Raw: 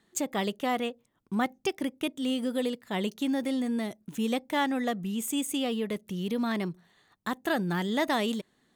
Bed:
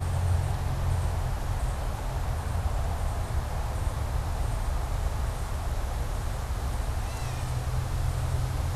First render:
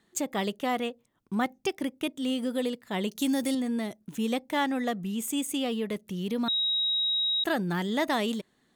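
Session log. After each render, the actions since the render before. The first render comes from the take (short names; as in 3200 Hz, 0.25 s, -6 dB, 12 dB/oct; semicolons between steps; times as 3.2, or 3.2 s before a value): 3.15–3.55 tone controls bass +4 dB, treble +12 dB; 6.48–7.44 bleep 3810 Hz -24 dBFS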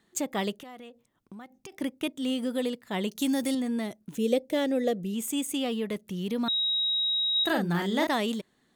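0.6–1.72 compressor 16:1, threshold -41 dBFS; 4.16–5.14 EQ curve 240 Hz 0 dB, 540 Hz +9 dB, 910 Hz -13 dB, 2200 Hz -4 dB, 4200 Hz 0 dB; 7.31–8.07 doubler 41 ms -4 dB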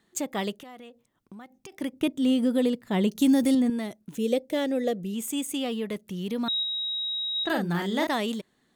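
1.93–3.7 low shelf 450 Hz +9.5 dB; 6.63–7.5 air absorption 120 m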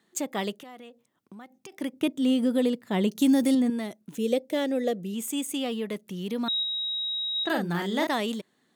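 HPF 150 Hz 12 dB/oct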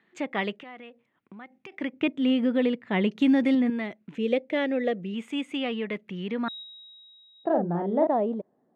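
low-pass sweep 2300 Hz -> 670 Hz, 6.22–7.54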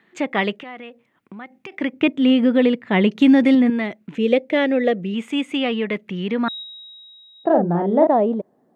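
gain +8 dB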